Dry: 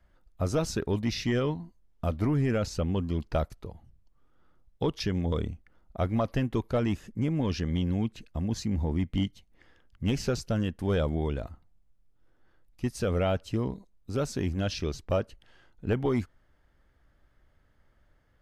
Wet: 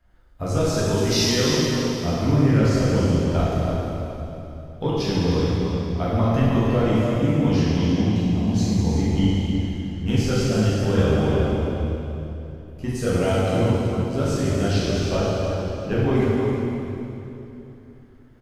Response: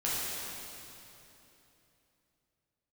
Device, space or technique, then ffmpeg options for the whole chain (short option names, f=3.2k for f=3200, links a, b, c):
cave: -filter_complex "[0:a]asettb=1/sr,asplit=3[a][b][c];[a]atrim=end=0.804[d];[b]atrim=start=0.8:end=1.48,asetpts=PTS-STARTPTS,afade=t=in:d=0.004:c=qsin,afade=t=out:st=0.676:d=0.004:c=qsin,bass=f=250:g=-4,treble=f=4k:g=14[e];[c]atrim=start=1.476[f];[d][e]acrossfade=d=0.004:c1=hsin:c2=qsin[g];[g][f]acrossfade=d=0.004:c1=qsin:c2=hsin,aecho=1:1:310:0.355[h];[1:a]atrim=start_sample=2205[i];[h][i]afir=irnorm=-1:irlink=0"